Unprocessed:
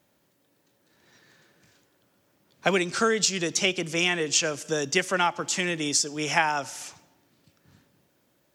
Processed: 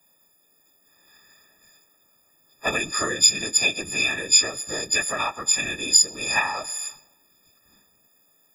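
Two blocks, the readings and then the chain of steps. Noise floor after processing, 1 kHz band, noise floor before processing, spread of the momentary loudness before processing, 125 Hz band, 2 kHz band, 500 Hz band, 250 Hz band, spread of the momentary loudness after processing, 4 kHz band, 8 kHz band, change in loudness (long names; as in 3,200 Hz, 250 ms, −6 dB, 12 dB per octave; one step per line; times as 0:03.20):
−63 dBFS, −2.0 dB, −69 dBFS, 7 LU, −6.0 dB, +2.0 dB, −5.5 dB, −6.0 dB, 12 LU, +6.0 dB, +8.0 dB, +4.5 dB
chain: every partial snapped to a pitch grid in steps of 6 semitones
random phases in short frames
level −6 dB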